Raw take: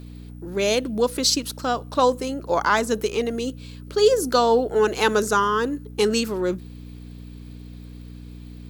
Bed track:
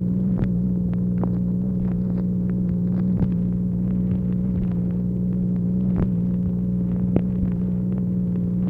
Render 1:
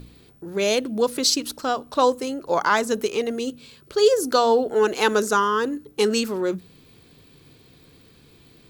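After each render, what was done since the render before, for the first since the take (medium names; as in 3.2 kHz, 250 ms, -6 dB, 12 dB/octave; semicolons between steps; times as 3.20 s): de-hum 60 Hz, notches 5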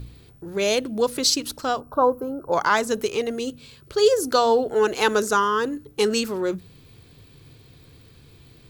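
1.80–2.52 s: time-frequency box 1.6–11 kHz -25 dB; resonant low shelf 150 Hz +6 dB, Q 1.5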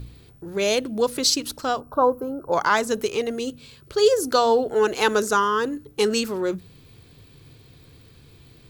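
no audible change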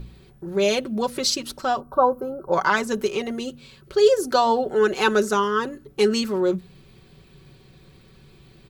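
treble shelf 4.8 kHz -7.5 dB; comb 5.3 ms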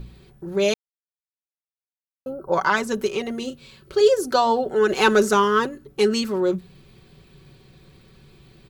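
0.74–2.26 s: mute; 3.39–4.01 s: doubling 31 ms -8.5 dB; 4.89–5.67 s: waveshaping leveller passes 1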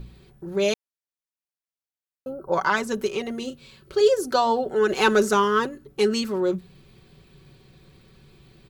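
trim -2 dB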